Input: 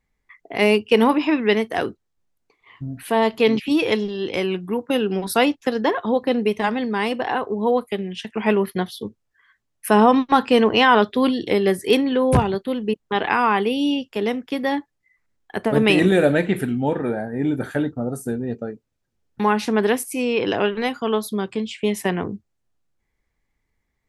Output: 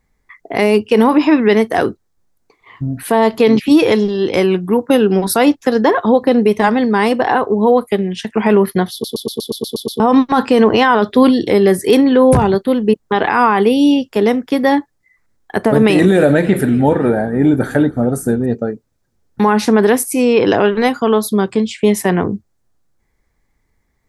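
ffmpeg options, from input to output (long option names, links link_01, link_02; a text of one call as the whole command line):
ffmpeg -i in.wav -filter_complex "[0:a]asettb=1/sr,asplit=3[link_01][link_02][link_03];[link_01]atrim=end=15.824[link_04];[link_02]atrim=start=15.82:end=18.46,asetpts=PTS-STARTPTS,afade=type=in:duration=0.004:curve=qsin,afade=type=out:start_time=2.636:duration=0.004:curve=qsin,asplit=5[link_05][link_06][link_07][link_08][link_09];[link_06]adelay=283,afreqshift=-33,volume=-21.5dB[link_10];[link_07]adelay=566,afreqshift=-66,volume=-26.2dB[link_11];[link_08]adelay=849,afreqshift=-99,volume=-31dB[link_12];[link_09]adelay=1132,afreqshift=-132,volume=-35.7dB[link_13];[link_05][link_10][link_11][link_12][link_13]amix=inputs=5:normalize=0,atrim=end_sample=116424[link_14];[link_03]atrim=start=18.456[link_15];[link_04][link_14]acrossfade=duration=0.004:curve1=hsin:curve2=qsin[link_16];[link_16][link_15]acrossfade=duration=0.004:curve1=qsin:curve2=hsin,asplit=10[link_17][link_18][link_19][link_20][link_21][link_22][link_23][link_24][link_25][link_26];[link_17]atrim=end=9.042[link_27];[link_18]atrim=start=8.918:end=9.042[link_28];[link_19]atrim=start=8.918:end=9.042[link_29];[link_20]atrim=start=8.918:end=9.042[link_30];[link_21]atrim=start=8.918:end=9.042[link_31];[link_22]atrim=start=8.918:end=9.042[link_32];[link_23]atrim=start=8.918:end=9.042[link_33];[link_24]atrim=start=8.918:end=9.042[link_34];[link_25]atrim=start=8.918:end=9.042[link_35];[link_26]atrim=start=9.998[link_36];[link_27][link_28]acrossfade=duration=0.004:curve1=hsin:curve2=hsin[link_37];[link_37][link_29]acrossfade=duration=0.004:curve1=hsin:curve2=hsin[link_38];[link_38][link_30]acrossfade=duration=0.004:curve1=hsin:curve2=hsin[link_39];[link_39][link_31]acrossfade=duration=0.004:curve1=hsin:curve2=hsin[link_40];[link_40][link_32]acrossfade=duration=0.004:curve1=hsin:curve2=hsin[link_41];[link_41][link_33]acrossfade=duration=0.004:curve1=hsin:curve2=hsin[link_42];[link_42][link_34]acrossfade=duration=0.004:curve1=hsin:curve2=hsin[link_43];[link_43][link_35]acrossfade=duration=0.004:curve1=hsin:curve2=hsin[link_44];[link_44][link_36]acrossfade=duration=0.004:curve1=hsin:curve2=hsin,equalizer=frequency=2800:width=1.7:gain=-7,alimiter=level_in=11dB:limit=-1dB:release=50:level=0:latency=1,volume=-1dB" out.wav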